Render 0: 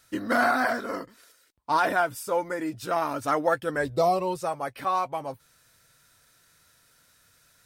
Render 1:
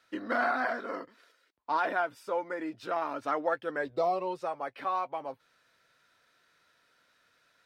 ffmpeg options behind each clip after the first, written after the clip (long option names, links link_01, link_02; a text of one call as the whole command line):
ffmpeg -i in.wav -filter_complex "[0:a]acrossover=split=230 4400:gain=0.158 1 0.112[link_01][link_02][link_03];[link_01][link_02][link_03]amix=inputs=3:normalize=0,asplit=2[link_04][link_05];[link_05]acompressor=threshold=-33dB:ratio=6,volume=-3dB[link_06];[link_04][link_06]amix=inputs=2:normalize=0,volume=-7dB" out.wav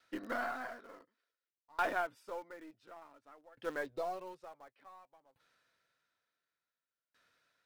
ffmpeg -i in.wav -filter_complex "[0:a]asplit=2[link_01][link_02];[link_02]acrusher=bits=3:dc=4:mix=0:aa=0.000001,volume=-10dB[link_03];[link_01][link_03]amix=inputs=2:normalize=0,aeval=exprs='val(0)*pow(10,-30*if(lt(mod(0.56*n/s,1),2*abs(0.56)/1000),1-mod(0.56*n/s,1)/(2*abs(0.56)/1000),(mod(0.56*n/s,1)-2*abs(0.56)/1000)/(1-2*abs(0.56)/1000))/20)':channel_layout=same,volume=-3.5dB" out.wav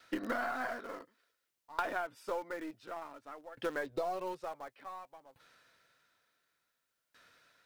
ffmpeg -i in.wav -af "acompressor=threshold=-42dB:ratio=8,volume=10dB" out.wav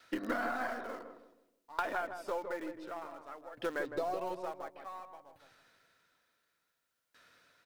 ffmpeg -i in.wav -filter_complex "[0:a]bandreject=frequency=50:width_type=h:width=6,bandreject=frequency=100:width_type=h:width=6,bandreject=frequency=150:width_type=h:width=6,asplit=2[link_01][link_02];[link_02]adelay=159,lowpass=frequency=910:poles=1,volume=-5.5dB,asplit=2[link_03][link_04];[link_04]adelay=159,lowpass=frequency=910:poles=1,volume=0.39,asplit=2[link_05][link_06];[link_06]adelay=159,lowpass=frequency=910:poles=1,volume=0.39,asplit=2[link_07][link_08];[link_08]adelay=159,lowpass=frequency=910:poles=1,volume=0.39,asplit=2[link_09][link_10];[link_10]adelay=159,lowpass=frequency=910:poles=1,volume=0.39[link_11];[link_01][link_03][link_05][link_07][link_09][link_11]amix=inputs=6:normalize=0" out.wav